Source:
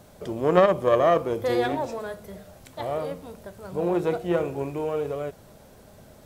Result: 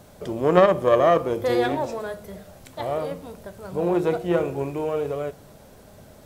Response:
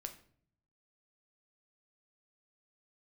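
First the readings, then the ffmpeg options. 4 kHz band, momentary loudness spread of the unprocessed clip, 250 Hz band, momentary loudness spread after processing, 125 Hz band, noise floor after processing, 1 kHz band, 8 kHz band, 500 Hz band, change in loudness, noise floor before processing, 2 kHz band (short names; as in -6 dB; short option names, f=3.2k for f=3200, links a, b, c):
+2.0 dB, 20 LU, +2.5 dB, 20 LU, +2.5 dB, -49 dBFS, +2.0 dB, n/a, +2.0 dB, +2.0 dB, -51 dBFS, +2.0 dB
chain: -filter_complex "[0:a]asplit=2[a][b];[1:a]atrim=start_sample=2205[c];[b][c]afir=irnorm=-1:irlink=0,volume=-7dB[d];[a][d]amix=inputs=2:normalize=0"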